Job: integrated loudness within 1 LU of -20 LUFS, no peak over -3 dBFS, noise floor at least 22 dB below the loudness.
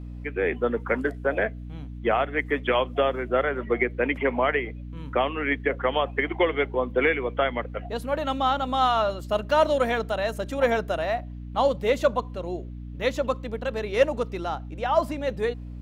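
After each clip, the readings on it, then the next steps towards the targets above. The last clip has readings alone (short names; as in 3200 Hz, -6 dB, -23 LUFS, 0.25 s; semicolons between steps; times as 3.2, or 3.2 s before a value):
hum 60 Hz; harmonics up to 300 Hz; hum level -35 dBFS; loudness -25.5 LUFS; peak -7.5 dBFS; loudness target -20.0 LUFS
-> notches 60/120/180/240/300 Hz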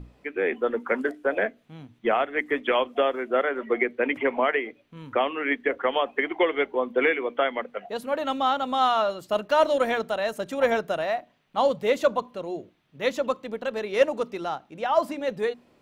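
hum none; loudness -26.0 LUFS; peak -7.5 dBFS; loudness target -20.0 LUFS
-> gain +6 dB; limiter -3 dBFS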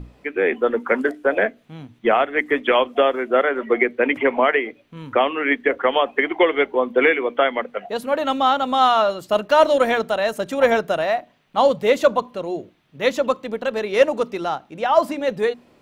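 loudness -20.0 LUFS; peak -3.0 dBFS; noise floor -56 dBFS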